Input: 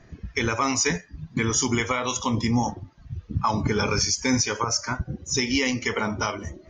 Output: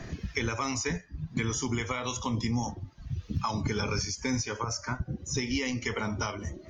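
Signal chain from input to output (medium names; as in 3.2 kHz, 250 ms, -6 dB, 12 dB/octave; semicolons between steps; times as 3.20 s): bass shelf 140 Hz +7 dB; three bands compressed up and down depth 70%; trim -8.5 dB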